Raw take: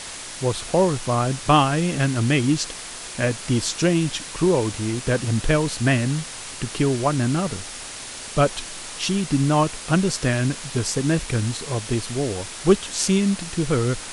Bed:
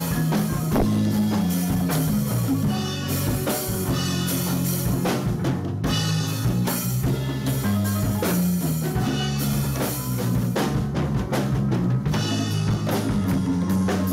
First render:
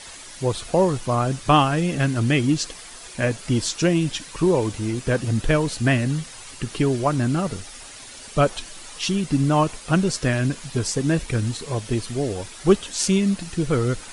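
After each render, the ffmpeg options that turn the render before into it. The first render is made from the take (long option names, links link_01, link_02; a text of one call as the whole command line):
ffmpeg -i in.wav -af "afftdn=noise_reduction=9:noise_floor=-36" out.wav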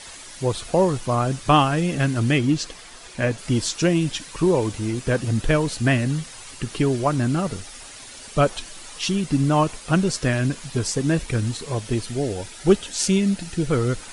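ffmpeg -i in.wav -filter_complex "[0:a]asettb=1/sr,asplit=3[link_01][link_02][link_03];[link_01]atrim=end=2.384[link_04];[link_02]atrim=start=2.38:end=3.38,asetpts=PTS-STARTPTS,afade=type=in:duration=0.004:curve=qsin,afade=type=out:start_time=0.996:duration=0.004:curve=qsin,highshelf=frequency=8700:gain=-10[link_05];[link_03]atrim=start=3.376[link_06];[link_04][link_05]acrossfade=duration=0.004:curve1=hsin:curve2=qsin[link_07];[link_07][link_06]acrossfade=duration=0.004:curve1=qsin:curve2=hsin,asettb=1/sr,asplit=3[link_08][link_09][link_10];[link_08]atrim=end=12.034[link_11];[link_09]atrim=start=12.03:end=13.7,asetpts=PTS-STARTPTS,afade=type=in:duration=0.004:curve=qsin,afade=type=out:start_time=1.666:duration=0.004:curve=qsin,asuperstop=centerf=1100:order=4:qfactor=6.8[link_12];[link_10]atrim=start=13.696[link_13];[link_11][link_12]acrossfade=duration=0.004:curve1=hsin:curve2=qsin[link_14];[link_14][link_13]acrossfade=duration=0.004:curve1=qsin:curve2=hsin" out.wav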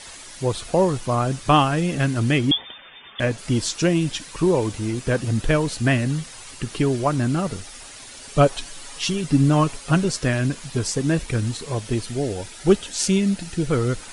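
ffmpeg -i in.wav -filter_complex "[0:a]asettb=1/sr,asplit=3[link_01][link_02][link_03];[link_01]atrim=end=2.514[link_04];[link_02]atrim=start=2.51:end=3.2,asetpts=PTS-STARTPTS,afade=type=in:duration=0.004:curve=qsin,afade=type=out:start_time=0.686:duration=0.004:curve=qsin,lowpass=frequency=3100:width_type=q:width=0.5098,lowpass=frequency=3100:width_type=q:width=0.6013,lowpass=frequency=3100:width_type=q:width=0.9,lowpass=frequency=3100:width_type=q:width=2.563,afreqshift=-3600[link_05];[link_03]atrim=start=3.196[link_06];[link_04][link_05]acrossfade=duration=0.004:curve1=hsin:curve2=qsin[link_07];[link_07][link_06]acrossfade=duration=0.004:curve1=qsin:curve2=hsin,asettb=1/sr,asplit=3[link_08][link_09][link_10];[link_08]atrim=end=8.274[link_11];[link_09]atrim=start=8.27:end=10.05,asetpts=PTS-STARTPTS,afade=type=in:duration=0.004:curve=qsin,afade=type=out:start_time=1.776:duration=0.004:curve=qsin,aecho=1:1:7.2:0.5,atrim=end_sample=78498[link_12];[link_10]atrim=start=10.046[link_13];[link_11][link_12]acrossfade=duration=0.004:curve1=hsin:curve2=qsin[link_14];[link_14][link_13]acrossfade=duration=0.004:curve1=qsin:curve2=hsin" out.wav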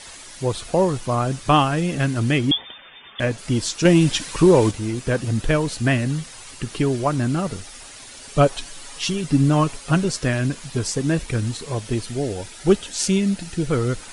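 ffmpeg -i in.wav -filter_complex "[0:a]asettb=1/sr,asplit=3[link_01][link_02][link_03];[link_01]atrim=end=3.854[link_04];[link_02]atrim=start=3.85:end=4.71,asetpts=PTS-STARTPTS,afade=type=in:duration=0.004:curve=qsin,afade=type=out:start_time=0.856:duration=0.004:curve=qsin,acontrast=58[link_05];[link_03]atrim=start=4.706[link_06];[link_04][link_05]acrossfade=duration=0.004:curve1=hsin:curve2=qsin[link_07];[link_07][link_06]acrossfade=duration=0.004:curve1=qsin:curve2=hsin" out.wav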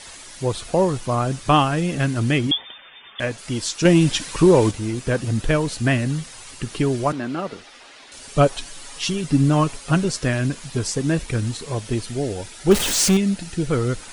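ffmpeg -i in.wav -filter_complex "[0:a]asettb=1/sr,asplit=3[link_01][link_02][link_03];[link_01]atrim=end=2.474[link_04];[link_02]atrim=start=2.47:end=3.81,asetpts=PTS-STARTPTS,afade=type=in:duration=0.004:curve=qsin,afade=type=out:start_time=1.336:duration=0.004:curve=qsin,lowshelf=frequency=440:gain=-6[link_05];[link_03]atrim=start=3.806[link_06];[link_04][link_05]acrossfade=duration=0.004:curve1=hsin:curve2=qsin[link_07];[link_07][link_06]acrossfade=duration=0.004:curve1=qsin:curve2=hsin,asettb=1/sr,asplit=3[link_08][link_09][link_10];[link_08]atrim=end=7.124[link_11];[link_09]atrim=start=7.12:end=8.12,asetpts=PTS-STARTPTS,afade=type=in:duration=0.004:curve=qsin,afade=type=out:start_time=0.996:duration=0.004:curve=qsin,acrossover=split=230 4700:gain=0.112 1 0.141[link_12][link_13][link_14];[link_12][link_13][link_14]amix=inputs=3:normalize=0[link_15];[link_10]atrim=start=8.116[link_16];[link_11][link_15]acrossfade=duration=0.004:curve1=hsin:curve2=qsin[link_17];[link_17][link_16]acrossfade=duration=0.004:curve1=qsin:curve2=hsin,asettb=1/sr,asplit=3[link_18][link_19][link_20];[link_18]atrim=end=12.714[link_21];[link_19]atrim=start=12.71:end=13.17,asetpts=PTS-STARTPTS,afade=type=in:duration=0.004:curve=qsin,afade=type=out:start_time=0.456:duration=0.004:curve=qsin,aeval=exprs='val(0)+0.5*0.126*sgn(val(0))':channel_layout=same[link_22];[link_20]atrim=start=13.166[link_23];[link_21][link_22]acrossfade=duration=0.004:curve1=hsin:curve2=qsin[link_24];[link_24][link_23]acrossfade=duration=0.004:curve1=qsin:curve2=hsin" out.wav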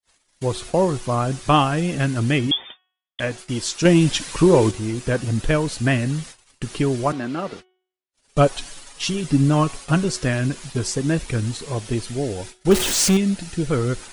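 ffmpeg -i in.wav -af "agate=range=-56dB:threshold=-36dB:ratio=16:detection=peak,bandreject=frequency=369.8:width_type=h:width=4,bandreject=frequency=739.6:width_type=h:width=4,bandreject=frequency=1109.4:width_type=h:width=4,bandreject=frequency=1479.2:width_type=h:width=4,bandreject=frequency=1849:width_type=h:width=4,bandreject=frequency=2218.8:width_type=h:width=4,bandreject=frequency=2588.6:width_type=h:width=4,bandreject=frequency=2958.4:width_type=h:width=4,bandreject=frequency=3328.2:width_type=h:width=4,bandreject=frequency=3698:width_type=h:width=4" out.wav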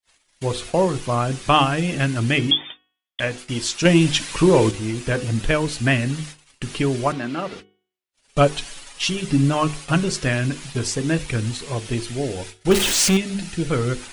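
ffmpeg -i in.wav -af "equalizer=frequency=2600:width=1.1:gain=4.5,bandreject=frequency=50:width_type=h:width=6,bandreject=frequency=100:width_type=h:width=6,bandreject=frequency=150:width_type=h:width=6,bandreject=frequency=200:width_type=h:width=6,bandreject=frequency=250:width_type=h:width=6,bandreject=frequency=300:width_type=h:width=6,bandreject=frequency=350:width_type=h:width=6,bandreject=frequency=400:width_type=h:width=6,bandreject=frequency=450:width_type=h:width=6,bandreject=frequency=500:width_type=h:width=6" out.wav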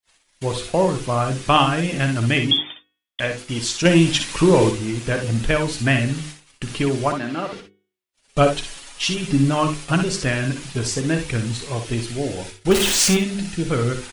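ffmpeg -i in.wav -af "aecho=1:1:60|70:0.398|0.158" out.wav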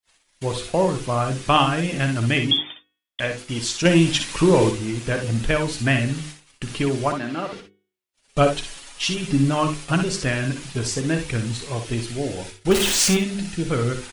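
ffmpeg -i in.wav -af "volume=-1.5dB" out.wav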